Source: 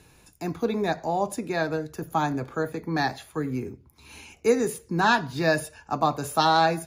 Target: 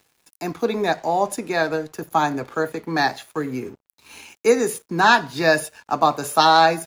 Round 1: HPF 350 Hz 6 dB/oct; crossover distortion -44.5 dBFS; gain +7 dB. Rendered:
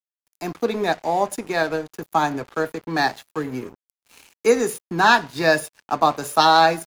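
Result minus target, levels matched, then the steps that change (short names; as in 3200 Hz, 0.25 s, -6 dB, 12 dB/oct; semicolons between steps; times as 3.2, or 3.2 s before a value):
crossover distortion: distortion +9 dB
change: crossover distortion -55 dBFS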